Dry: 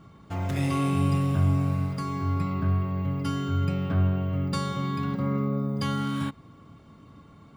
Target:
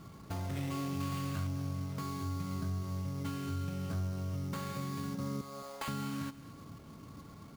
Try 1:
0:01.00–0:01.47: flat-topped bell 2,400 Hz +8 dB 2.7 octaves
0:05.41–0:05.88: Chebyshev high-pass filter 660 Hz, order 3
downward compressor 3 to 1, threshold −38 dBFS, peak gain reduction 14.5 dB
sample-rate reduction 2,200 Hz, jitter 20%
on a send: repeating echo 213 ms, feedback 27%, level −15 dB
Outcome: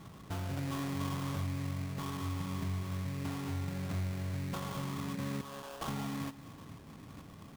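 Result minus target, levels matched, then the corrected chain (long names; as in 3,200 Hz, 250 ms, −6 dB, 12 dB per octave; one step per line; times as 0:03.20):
sample-rate reduction: distortion +5 dB
0:01.00–0:01.47: flat-topped bell 2,400 Hz +8 dB 2.7 octaves
0:05.41–0:05.88: Chebyshev high-pass filter 660 Hz, order 3
downward compressor 3 to 1, threshold −38 dBFS, peak gain reduction 14.5 dB
sample-rate reduction 5,700 Hz, jitter 20%
on a send: repeating echo 213 ms, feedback 27%, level −15 dB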